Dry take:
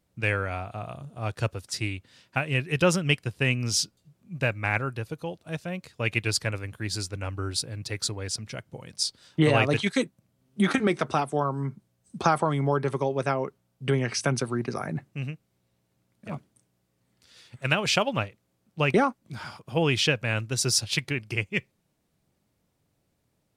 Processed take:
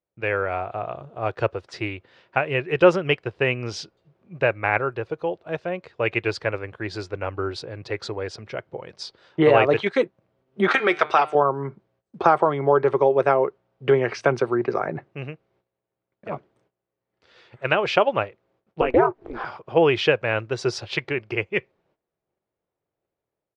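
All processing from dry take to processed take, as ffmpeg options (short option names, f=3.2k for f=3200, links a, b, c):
-filter_complex "[0:a]asettb=1/sr,asplit=3[a][b][c];[a]atrim=end=10.684[d];[b]atrim=start=10.68:end=11.35,asetpts=PTS-STARTPTS,afade=t=in:d=0.004:c=qsin,afade=t=out:st=0.666:d=0.004:c=qsin,tiltshelf=f=810:g=-9.5,bandreject=f=151.4:t=h:w=4,bandreject=f=302.8:t=h:w=4,bandreject=f=454.2:t=h:w=4,bandreject=f=605.6:t=h:w=4,bandreject=f=757:t=h:w=4,bandreject=f=908.4:t=h:w=4,bandreject=f=1.0598k:t=h:w=4,bandreject=f=1.2112k:t=h:w=4,bandreject=f=1.3626k:t=h:w=4,bandreject=f=1.514k:t=h:w=4,bandreject=f=1.6654k:t=h:w=4,bandreject=f=1.8168k:t=h:w=4,bandreject=f=1.9682k:t=h:w=4,bandreject=f=2.1196k:t=h:w=4,bandreject=f=2.271k:t=h:w=4,bandreject=f=2.4224k:t=h:w=4,bandreject=f=2.5738k:t=h:w=4,bandreject=f=2.7252k:t=h:w=4,bandreject=f=2.8766k:t=h:w=4,bandreject=f=3.028k:t=h:w=4,bandreject=f=3.1794k:t=h:w=4,bandreject=f=3.3308k:t=h:w=4,bandreject=f=3.4822k:t=h:w=4,bandreject=f=3.6336k:t=h:w=4,bandreject=f=3.785k:t=h:w=4,bandreject=f=3.9364k:t=h:w=4,bandreject=f=4.0878k:t=h:w=4,bandreject=f=4.2392k:t=h:w=4,bandreject=f=4.3906k:t=h:w=4,bandreject=f=4.542k:t=h:w=4,bandreject=f=4.6934k:t=h:w=4[e];[c]atrim=start=11.346[f];[d][e]acrossfade=d=0.004:c1=hsin:c2=qsin[g];[g][f]acrossfade=d=0.004:c1=qsin:c2=hsin,asettb=1/sr,asplit=3[h][i][j];[h]atrim=end=18.814[k];[i]atrim=start=18.81:end=19.45,asetpts=PTS-STARTPTS,afade=t=in:d=0.004:c=qsin,afade=t=out:st=0.636:d=0.004:c=qsin,highshelf=f=2.5k:g=-10,acompressor=mode=upward:threshold=-23dB:ratio=2.5:attack=3.2:release=140:knee=2.83:detection=peak,aeval=exprs='val(0)*sin(2*PI*120*n/s)':c=same[l];[j]atrim=start=19.446[m];[k][l]acrossfade=d=0.004:c1=hsin:c2=qsin[n];[n][m]acrossfade=d=0.004:c1=qsin:c2=hsin,dynaudnorm=f=150:g=5:m=5.5dB,firequalizer=gain_entry='entry(260,0);entry(360,13);entry(11000,-29)':delay=0.05:min_phase=1,agate=range=-15dB:threshold=-58dB:ratio=16:detection=peak,volume=-8dB"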